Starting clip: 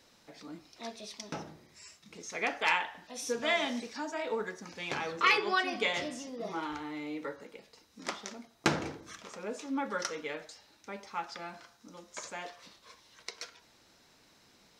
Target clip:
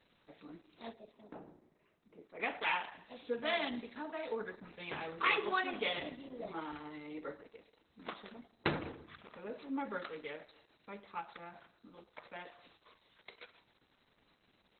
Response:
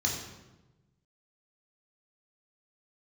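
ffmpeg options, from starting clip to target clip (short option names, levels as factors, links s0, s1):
-filter_complex "[0:a]asettb=1/sr,asplit=3[s0][s1][s2];[s0]atrim=end=0.934[s3];[s1]atrim=start=0.93:end=2.4,asetpts=PTS-STARTPTS,afade=t=in:d=0.004:c=qsin,afade=t=out:st=1.466:d=0.004:c=qsin,bandpass=f=420:t=q:w=0.84:csg=0[s4];[s2]atrim=start=2.396[s5];[s3][s4]acrossfade=d=0.004:c1=hsin:c2=qsin[s6];[s6][s5]acrossfade=d=0.004:c1=qsin:c2=hsin,asettb=1/sr,asplit=3[s7][s8][s9];[s7]atrim=end=11.984[s10];[s8]atrim=start=11.98:end=12.49,asetpts=PTS-STARTPTS,afade=t=in:d=0.004:c=qsin,afade=t=out:st=0.506:d=0.004:c=qsin,bandreject=f=383.5:t=h:w=4,bandreject=f=767:t=h:w=4,bandreject=f=1150.5:t=h:w=4,bandreject=f=1534:t=h:w=4,bandreject=f=1917.5:t=h:w=4,bandreject=f=2301:t=h:w=4,bandreject=f=2684.5:t=h:w=4,bandreject=f=3068:t=h:w=4,bandreject=f=3451.5:t=h:w=4,bandreject=f=3835:t=h:w=4,bandreject=f=4218.5:t=h:w=4,bandreject=f=4602:t=h:w=4,bandreject=f=4985.5:t=h:w=4,bandreject=f=5369:t=h:w=4,bandreject=f=5752.5:t=h:w=4,bandreject=f=6136:t=h:w=4,bandreject=f=6519.5:t=h:w=4,bandreject=f=6903:t=h:w=4,bandreject=f=7286.5:t=h:w=4,bandreject=f=7670:t=h:w=4,bandreject=f=8053.5:t=h:w=4,bandreject=f=8437:t=h:w=4,bandreject=f=8820.5:t=h:w=4,bandreject=f=9204:t=h:w=4[s11];[s9]atrim=start=12.486[s12];[s10][s11]acrossfade=d=0.004:c1=hsin:c2=qsin[s13];[s13][s12]acrossfade=d=0.004:c1=qsin:c2=hsin,asplit=2[s14][s15];[1:a]atrim=start_sample=2205,highshelf=f=12000:g=-2.5,adelay=104[s16];[s15][s16]afir=irnorm=-1:irlink=0,volume=0.0398[s17];[s14][s17]amix=inputs=2:normalize=0,volume=0.631" -ar 48000 -c:a libopus -b:a 8k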